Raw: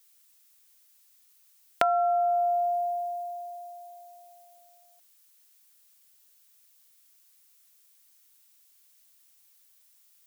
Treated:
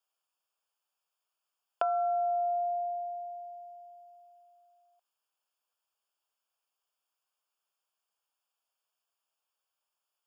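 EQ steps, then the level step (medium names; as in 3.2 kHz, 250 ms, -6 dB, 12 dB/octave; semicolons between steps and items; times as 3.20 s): boxcar filter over 22 samples; high-pass 690 Hz 12 dB/octave; 0.0 dB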